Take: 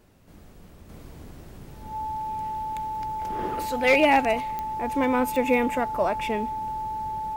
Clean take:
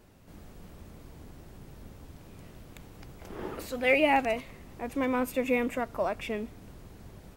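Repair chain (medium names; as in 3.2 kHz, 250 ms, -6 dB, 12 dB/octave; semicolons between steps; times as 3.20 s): clip repair -11.5 dBFS; de-click; band-stop 870 Hz, Q 30; trim 0 dB, from 0.89 s -5 dB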